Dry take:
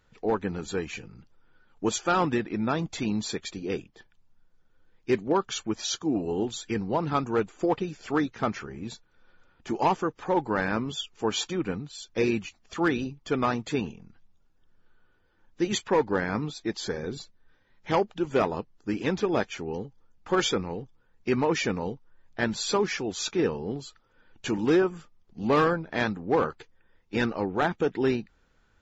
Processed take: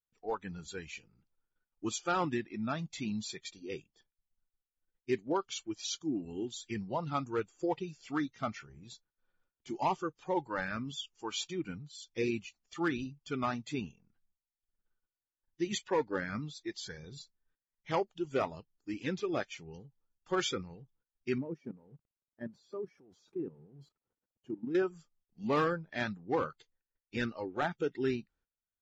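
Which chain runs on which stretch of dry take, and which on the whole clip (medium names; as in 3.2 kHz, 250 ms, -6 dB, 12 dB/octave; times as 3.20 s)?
21.38–24.75 s: jump at every zero crossing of -37.5 dBFS + level held to a coarse grid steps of 13 dB + band-pass filter 240 Hz, Q 0.55
whole clip: gate -57 dBFS, range -17 dB; spectral noise reduction 13 dB; trim -7 dB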